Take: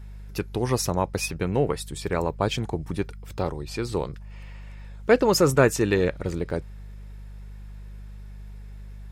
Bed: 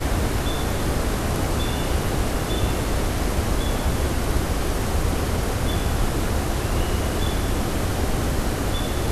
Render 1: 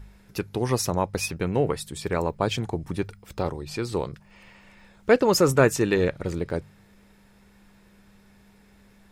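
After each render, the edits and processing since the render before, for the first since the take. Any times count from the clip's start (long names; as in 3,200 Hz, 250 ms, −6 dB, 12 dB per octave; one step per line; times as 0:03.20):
hum removal 50 Hz, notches 3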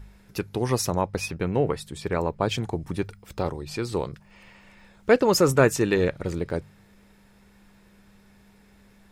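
0:01.01–0:02.49: high-shelf EQ 5,500 Hz −7.5 dB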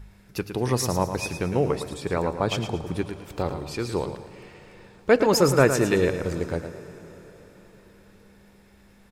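on a send: repeating echo 111 ms, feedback 34%, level −9 dB
on the sum: dense smooth reverb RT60 5 s, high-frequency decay 0.85×, DRR 15 dB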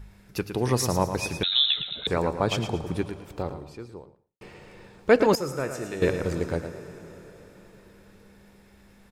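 0:01.43–0:02.07: voice inversion scrambler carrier 3,900 Hz
0:02.79–0:04.41: fade out and dull
0:05.35–0:06.02: tuned comb filter 73 Hz, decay 1.9 s, mix 80%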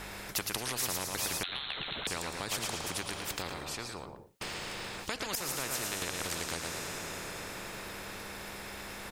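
downward compressor, threshold −27 dBFS, peak gain reduction 14.5 dB
every bin compressed towards the loudest bin 4 to 1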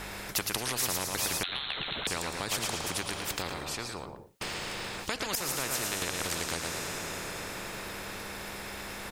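level +3 dB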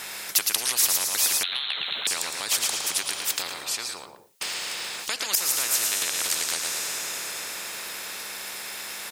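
high-pass filter 580 Hz 6 dB per octave
high-shelf EQ 2,600 Hz +11 dB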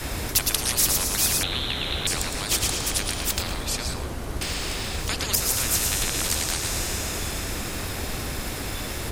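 mix in bed −9 dB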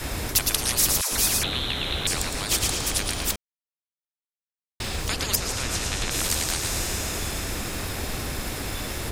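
0:01.01–0:01.53: all-pass dispersion lows, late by 112 ms, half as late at 530 Hz
0:03.36–0:04.80: silence
0:05.36–0:06.11: high-frequency loss of the air 64 metres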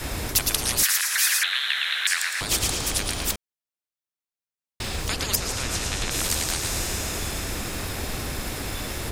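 0:00.83–0:02.41: high-pass with resonance 1,700 Hz, resonance Q 4.4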